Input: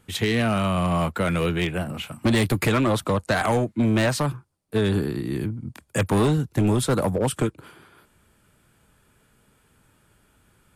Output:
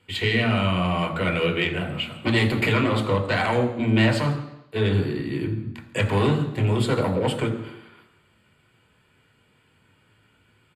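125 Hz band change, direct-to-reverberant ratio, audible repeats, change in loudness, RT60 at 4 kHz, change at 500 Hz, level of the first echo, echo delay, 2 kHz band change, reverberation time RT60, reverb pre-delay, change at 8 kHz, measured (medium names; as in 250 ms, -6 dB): +1.0 dB, 3.0 dB, 1, 0.0 dB, 0.90 s, 0.0 dB, -21.0 dB, 166 ms, +3.0 dB, 0.85 s, 3 ms, -9.5 dB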